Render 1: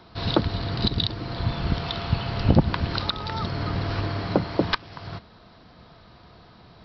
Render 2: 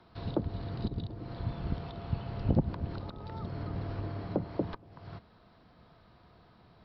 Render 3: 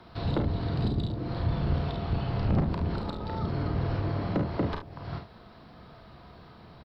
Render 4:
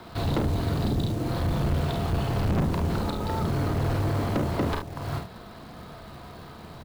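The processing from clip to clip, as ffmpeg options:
-filter_complex "[0:a]highshelf=f=4.8k:g=-11.5,acrossover=split=460|790[a][b][c];[c]acompressor=threshold=-43dB:ratio=6[d];[a][b][d]amix=inputs=3:normalize=0,volume=-9dB"
-filter_complex "[0:a]asoftclip=type=tanh:threshold=-29.5dB,asplit=2[a][b];[b]aecho=0:1:35|49|72:0.447|0.398|0.251[c];[a][c]amix=inputs=2:normalize=0,volume=8dB"
-af "acrusher=bits=4:mode=log:mix=0:aa=0.000001,asoftclip=type=tanh:threshold=-28dB,bandreject=f=60:t=h:w=6,bandreject=f=120:t=h:w=6,bandreject=f=180:t=h:w=6,volume=7.5dB"

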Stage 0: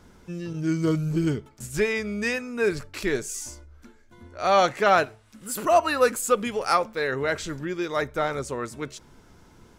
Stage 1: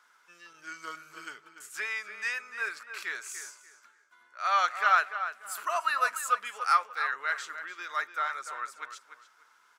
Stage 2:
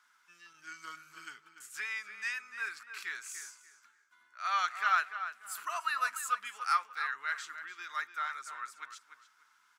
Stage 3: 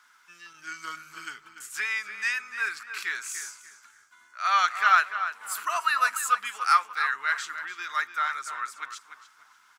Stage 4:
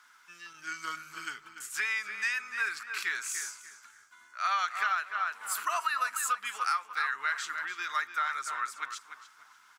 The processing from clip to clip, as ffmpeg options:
-filter_complex "[0:a]highpass=f=1.3k:t=q:w=2.6,asplit=2[a][b];[b]adelay=293,lowpass=f=2.9k:p=1,volume=-9.5dB,asplit=2[c][d];[d]adelay=293,lowpass=f=2.9k:p=1,volume=0.27,asplit=2[e][f];[f]adelay=293,lowpass=f=2.9k:p=1,volume=0.27[g];[a][c][e][g]amix=inputs=4:normalize=0,volume=-7.5dB"
-af "equalizer=f=520:w=1.3:g=-14,volume=-3dB"
-filter_complex "[0:a]asplit=4[a][b][c][d];[b]adelay=292,afreqshift=-100,volume=-23dB[e];[c]adelay=584,afreqshift=-200,volume=-29dB[f];[d]adelay=876,afreqshift=-300,volume=-35dB[g];[a][e][f][g]amix=inputs=4:normalize=0,volume=8.5dB"
-af "acompressor=threshold=-26dB:ratio=12"

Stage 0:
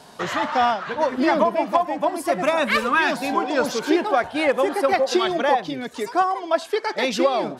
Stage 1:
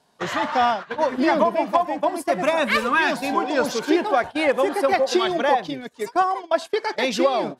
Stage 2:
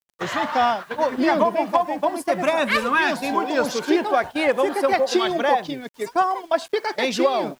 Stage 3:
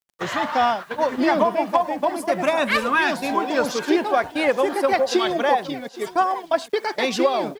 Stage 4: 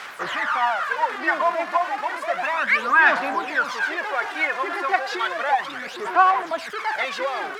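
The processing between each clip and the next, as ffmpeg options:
-af "bandreject=f=1.3k:w=23,agate=range=-17dB:threshold=-28dB:ratio=16:detection=peak"
-af "acrusher=bits=8:mix=0:aa=0.000001"
-af "aecho=1:1:819:0.119"
-af "aeval=exprs='val(0)+0.5*0.1*sgn(val(0))':c=same,aphaser=in_gain=1:out_gain=1:delay=2.9:decay=0.6:speed=0.32:type=sinusoidal,bandpass=f=1.5k:t=q:w=1.7:csg=0"

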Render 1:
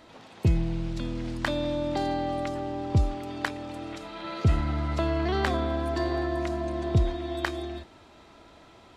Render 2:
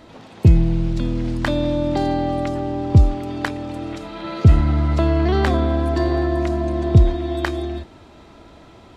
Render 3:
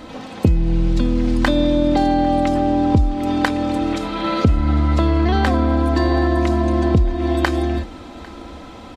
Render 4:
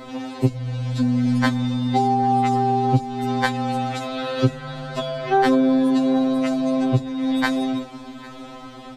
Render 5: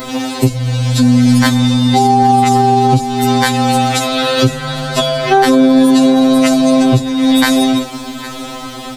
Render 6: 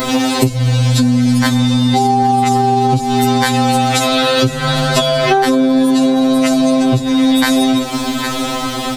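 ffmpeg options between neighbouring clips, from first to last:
-af "lowshelf=f=460:g=7.5,volume=4dB"
-af "aecho=1:1:3.9:0.51,acompressor=threshold=-20dB:ratio=6,aecho=1:1:799:0.075,volume=7.5dB"
-af "afftfilt=real='re*2.45*eq(mod(b,6),0)':imag='im*2.45*eq(mod(b,6),0)':win_size=2048:overlap=0.75,volume=1.5dB"
-af "aemphasis=mode=production:type=75kf,alimiter=level_in=12dB:limit=-1dB:release=50:level=0:latency=1,volume=-1dB"
-af "acompressor=threshold=-17dB:ratio=6,volume=7dB"

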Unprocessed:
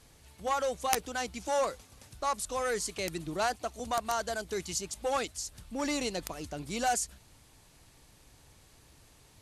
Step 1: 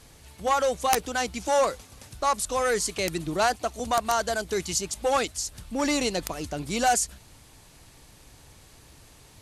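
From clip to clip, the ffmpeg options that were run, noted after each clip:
-af "acontrast=79"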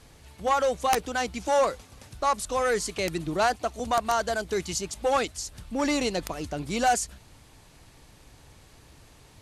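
-af "highshelf=f=5.2k:g=-6.5"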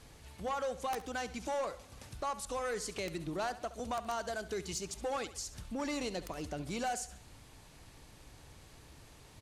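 -af "acompressor=threshold=-36dB:ratio=2,asoftclip=type=tanh:threshold=-24dB,aecho=1:1:69|138|207|276:0.178|0.0782|0.0344|0.0151,volume=-3dB"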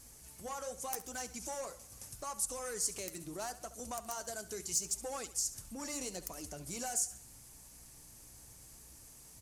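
-af "flanger=delay=3.2:depth=7:regen=-53:speed=0.78:shape=triangular,aeval=exprs='val(0)+0.000794*(sin(2*PI*60*n/s)+sin(2*PI*2*60*n/s)/2+sin(2*PI*3*60*n/s)/3+sin(2*PI*4*60*n/s)/4+sin(2*PI*5*60*n/s)/5)':c=same,aexciter=amount=7.4:drive=3.3:freq=5.3k,volume=-2.5dB"

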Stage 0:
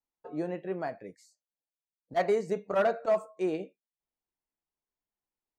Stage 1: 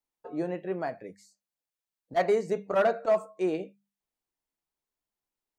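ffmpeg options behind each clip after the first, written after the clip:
-af "bandreject=f=50:t=h:w=6,bandreject=f=100:t=h:w=6,bandreject=f=150:t=h:w=6,bandreject=f=200:t=h:w=6,volume=2dB"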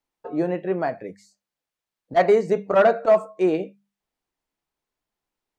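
-af "highshelf=f=5.9k:g=-10,volume=8dB"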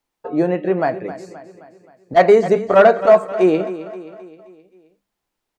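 -af "aecho=1:1:263|526|789|1052|1315:0.2|0.102|0.0519|0.0265|0.0135,volume=6dB"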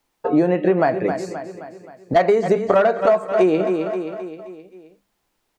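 -af "acompressor=threshold=-20dB:ratio=12,volume=7.5dB"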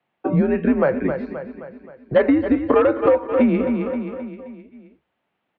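-af "highpass=f=270:t=q:w=0.5412,highpass=f=270:t=q:w=1.307,lowpass=f=3.3k:t=q:w=0.5176,lowpass=f=3.3k:t=q:w=0.7071,lowpass=f=3.3k:t=q:w=1.932,afreqshift=-130"

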